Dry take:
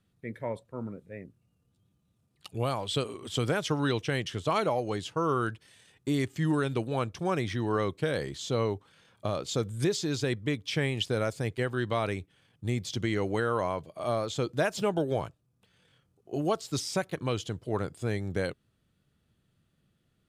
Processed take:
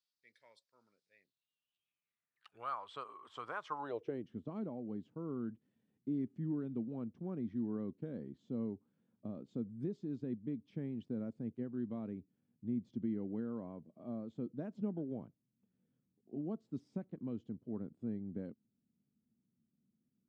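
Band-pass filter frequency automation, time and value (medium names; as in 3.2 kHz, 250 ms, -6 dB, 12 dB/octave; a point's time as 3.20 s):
band-pass filter, Q 4.7
1.08 s 4.9 kHz
2.90 s 1.1 kHz
3.71 s 1.1 kHz
4.28 s 230 Hz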